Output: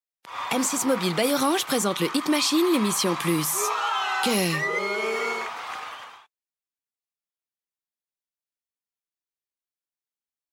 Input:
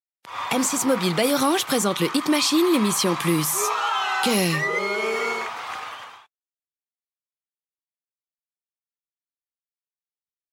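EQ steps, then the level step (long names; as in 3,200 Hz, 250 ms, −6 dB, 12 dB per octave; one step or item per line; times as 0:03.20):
parametric band 110 Hz −4.5 dB 0.84 octaves
−2.0 dB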